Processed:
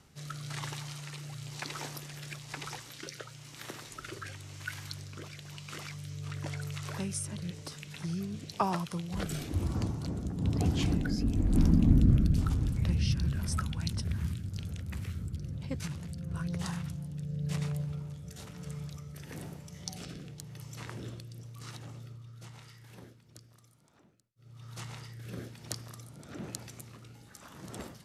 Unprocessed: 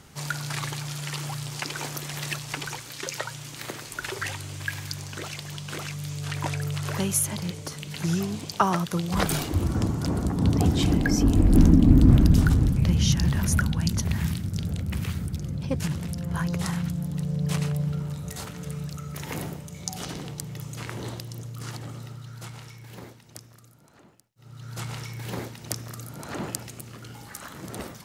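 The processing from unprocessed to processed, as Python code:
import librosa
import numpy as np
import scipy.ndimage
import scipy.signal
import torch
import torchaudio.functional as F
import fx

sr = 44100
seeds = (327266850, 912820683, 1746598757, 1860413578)

y = fx.rotary(x, sr, hz=1.0)
y = fx.formant_shift(y, sr, semitones=-2)
y = y * librosa.db_to_amplitude(-6.5)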